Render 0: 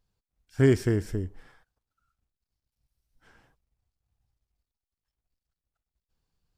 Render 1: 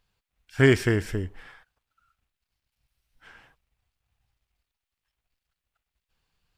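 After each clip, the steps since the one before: FFT filter 320 Hz 0 dB, 2.7 kHz +12 dB, 5.5 kHz +3 dB; trim +1 dB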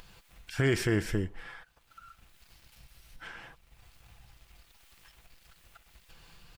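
comb 5.9 ms, depth 31%; upward compressor, threshold -37 dBFS; peak limiter -18 dBFS, peak gain reduction 10 dB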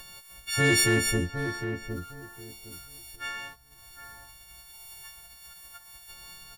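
partials quantised in pitch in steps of 4 st; waveshaping leveller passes 1; on a send: filtered feedback delay 760 ms, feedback 22%, low-pass 1.4 kHz, level -7.5 dB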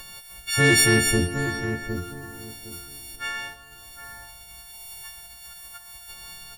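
plate-style reverb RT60 2.8 s, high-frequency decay 0.75×, DRR 10.5 dB; trim +4.5 dB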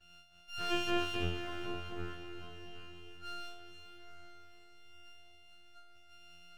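pitch-class resonator F, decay 0.32 s; half-wave rectifier; echo that smears into a reverb 481 ms, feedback 56%, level -11 dB; trim -3.5 dB

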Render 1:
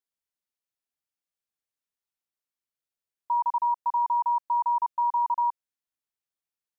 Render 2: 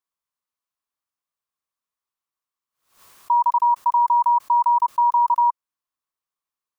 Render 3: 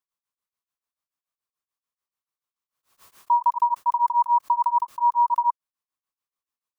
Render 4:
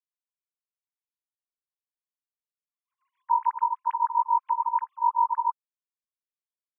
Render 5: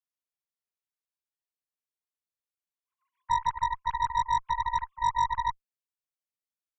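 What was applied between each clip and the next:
peaking EQ 1.1 kHz +13.5 dB 0.46 oct; swell ahead of each attack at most 120 dB/s
tremolo of two beating tones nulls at 6.9 Hz
formants replaced by sine waves; trim -4 dB
Chebyshev shaper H 2 -18 dB, 4 -18 dB, 8 -23 dB, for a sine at -13 dBFS; trim -3.5 dB

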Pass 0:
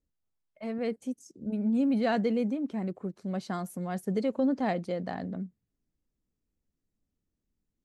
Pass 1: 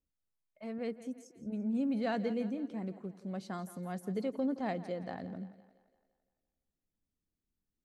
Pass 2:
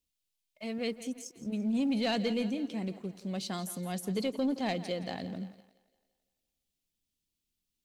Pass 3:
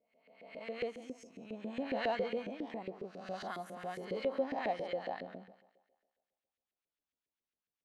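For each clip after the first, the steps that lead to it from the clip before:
two-band feedback delay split 310 Hz, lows 88 ms, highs 170 ms, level -15 dB; trim -6.5 dB
resonant high shelf 2.1 kHz +10 dB, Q 1.5; waveshaping leveller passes 1
reverse spectral sustain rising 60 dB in 0.92 s; bass shelf 72 Hz +11.5 dB; LFO band-pass saw up 7.3 Hz 430–2000 Hz; trim +2 dB

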